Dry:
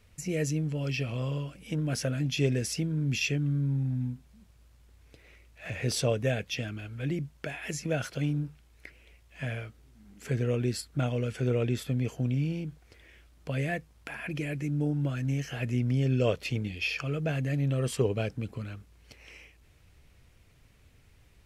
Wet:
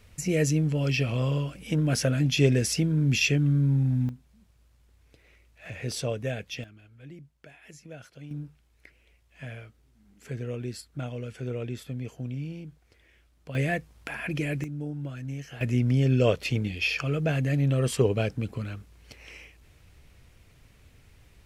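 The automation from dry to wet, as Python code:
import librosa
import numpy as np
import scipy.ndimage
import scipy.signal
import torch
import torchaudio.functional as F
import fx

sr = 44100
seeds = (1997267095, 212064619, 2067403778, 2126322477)

y = fx.gain(x, sr, db=fx.steps((0.0, 5.5), (4.09, -3.0), (6.64, -14.0), (8.31, -5.5), (13.55, 4.0), (14.64, -5.5), (15.61, 4.0)))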